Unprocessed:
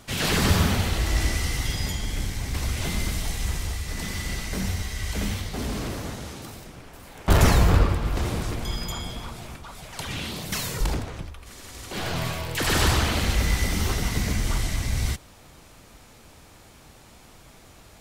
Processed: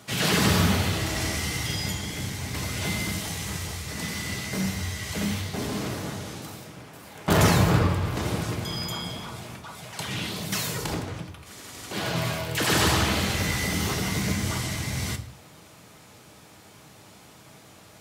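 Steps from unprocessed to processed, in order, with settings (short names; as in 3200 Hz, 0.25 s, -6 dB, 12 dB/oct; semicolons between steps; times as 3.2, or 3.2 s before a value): HPF 86 Hz 24 dB/oct; on a send: reverb, pre-delay 5 ms, DRR 6.5 dB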